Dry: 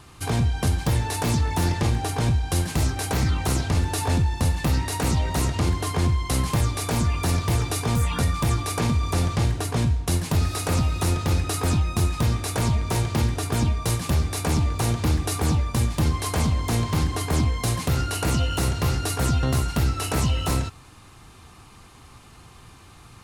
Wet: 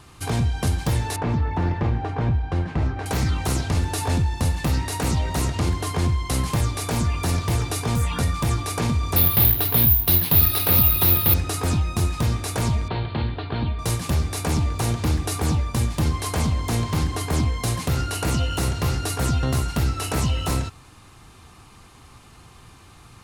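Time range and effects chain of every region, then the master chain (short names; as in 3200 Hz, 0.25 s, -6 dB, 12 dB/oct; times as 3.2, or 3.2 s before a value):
1.16–3.06 LPF 1900 Hz + careless resampling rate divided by 2×, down none, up filtered
9.16–11.34 synth low-pass 3800 Hz, resonance Q 2.5 + careless resampling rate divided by 3×, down filtered, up zero stuff
12.88–13.79 rippled Chebyshev low-pass 4400 Hz, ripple 3 dB + bell 1200 Hz -3 dB 0.31 oct
whole clip: dry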